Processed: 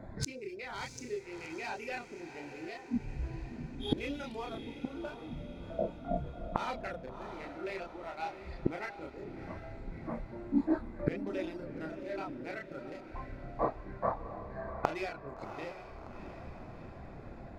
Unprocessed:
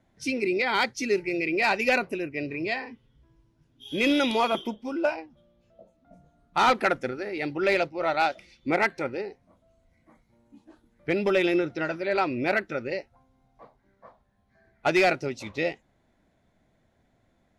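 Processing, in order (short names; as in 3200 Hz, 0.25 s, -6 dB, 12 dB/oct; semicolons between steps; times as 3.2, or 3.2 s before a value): Wiener smoothing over 15 samples; reverb removal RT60 0.59 s; in parallel at +1.5 dB: compressor, threshold -35 dBFS, peak gain reduction 15.5 dB; on the sum: chorus voices 4, 0.34 Hz, delay 30 ms, depth 1.6 ms; flipped gate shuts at -31 dBFS, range -32 dB; diffused feedback echo 0.699 s, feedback 55%, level -10 dB; on a send at -23 dB: reverb RT60 3.2 s, pre-delay 6 ms; on the sum: gain +17 dB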